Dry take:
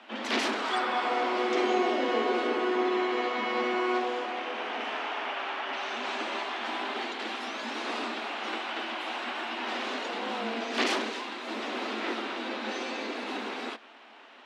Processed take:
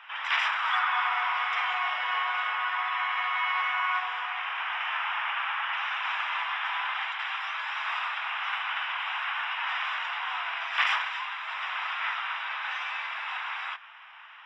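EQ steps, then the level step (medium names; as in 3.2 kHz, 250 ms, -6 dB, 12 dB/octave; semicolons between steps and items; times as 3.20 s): Savitzky-Golay filter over 25 samples; steep high-pass 950 Hz 36 dB/octave; +6.0 dB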